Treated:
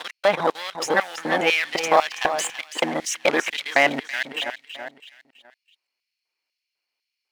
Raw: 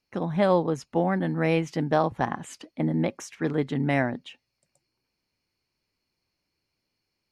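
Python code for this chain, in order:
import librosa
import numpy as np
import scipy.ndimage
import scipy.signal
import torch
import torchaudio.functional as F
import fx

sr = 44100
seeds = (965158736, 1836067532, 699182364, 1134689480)

p1 = fx.local_reverse(x, sr, ms=235.0)
p2 = fx.peak_eq(p1, sr, hz=2700.0, db=6.5, octaves=1.0)
p3 = fx.over_compress(p2, sr, threshold_db=-26.0, ratio=-0.5)
p4 = p2 + (p3 * 10.0 ** (2.0 / 20.0))
p5 = fx.leveller(p4, sr, passes=2)
p6 = fx.level_steps(p5, sr, step_db=14)
p7 = fx.echo_feedback(p6, sr, ms=328, feedback_pct=43, wet_db=-11.0)
p8 = fx.filter_lfo_highpass(p7, sr, shape='square', hz=2.0, low_hz=670.0, high_hz=2600.0, q=0.98)
y = p8 * 10.0 ** (1.5 / 20.0)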